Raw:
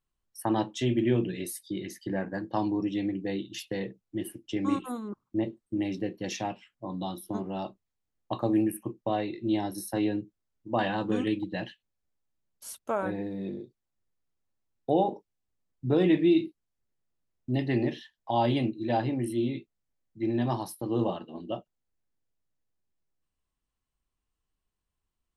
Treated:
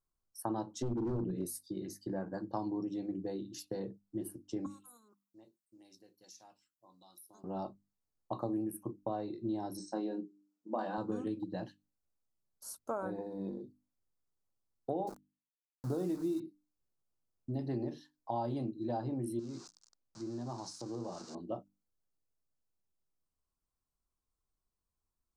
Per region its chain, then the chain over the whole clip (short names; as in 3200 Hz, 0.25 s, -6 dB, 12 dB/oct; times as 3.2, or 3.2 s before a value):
0.82–1.46 HPF 120 Hz + hard clip -27 dBFS + tilt -3 dB/oct
4.66–7.44 pre-emphasis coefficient 0.97 + compressor 3:1, threshold -49 dBFS
9.77–10.98 brick-wall FIR band-pass 160–8400 Hz + notches 50/100/150/200/250/300/350/400 Hz + doubler 27 ms -9 dB
13.18–13.61 bell 950 Hz +9 dB 0.53 oct + comb 4 ms, depth 32%
15.07–16.4 CVSD 64 kbps + sample gate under -36 dBFS
19.39–21.35 switching spikes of -25 dBFS + inverse Chebyshev low-pass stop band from 11000 Hz + compressor 2.5:1, threshold -37 dBFS
whole clip: compressor, threshold -28 dBFS; band shelf 2500 Hz -16 dB 1.2 oct; notches 50/100/150/200/250/300 Hz; gain -4 dB